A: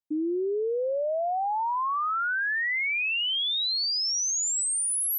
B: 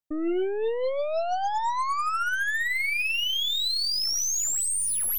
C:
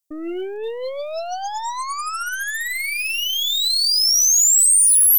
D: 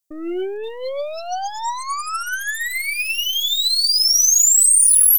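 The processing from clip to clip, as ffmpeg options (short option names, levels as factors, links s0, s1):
-af "aphaser=in_gain=1:out_gain=1:delay=3.3:decay=0.27:speed=1.5:type=triangular,aeval=exprs='0.0841*(cos(1*acos(clip(val(0)/0.0841,-1,1)))-cos(1*PI/2))+0.00944*(cos(4*acos(clip(val(0)/0.0841,-1,1)))-cos(4*PI/2))+0.00266*(cos(6*acos(clip(val(0)/0.0841,-1,1)))-cos(6*PI/2))+0.00668*(cos(8*acos(clip(val(0)/0.0841,-1,1)))-cos(8*PI/2))':c=same"
-af "bass=f=250:g=-5,treble=f=4000:g=14"
-af "aecho=1:1:5.3:0.46"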